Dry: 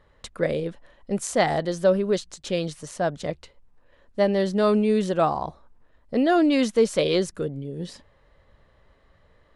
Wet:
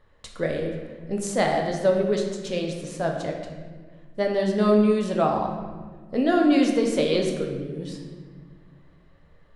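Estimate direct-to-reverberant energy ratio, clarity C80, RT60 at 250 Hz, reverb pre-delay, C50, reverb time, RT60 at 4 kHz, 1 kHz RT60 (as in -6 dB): 1.0 dB, 6.0 dB, 2.6 s, 6 ms, 4.0 dB, 1.6 s, 1.0 s, 1.4 s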